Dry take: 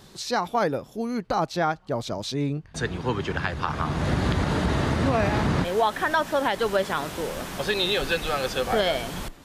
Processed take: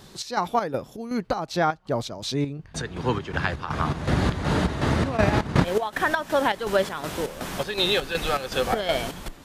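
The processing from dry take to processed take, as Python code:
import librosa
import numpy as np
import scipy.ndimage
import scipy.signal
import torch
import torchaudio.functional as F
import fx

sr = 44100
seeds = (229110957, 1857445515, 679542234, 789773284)

y = fx.chopper(x, sr, hz=2.7, depth_pct=60, duty_pct=60)
y = fx.transient(y, sr, attack_db=7, sustain_db=-7, at=(5.17, 6.0))
y = F.gain(torch.from_numpy(y), 2.0).numpy()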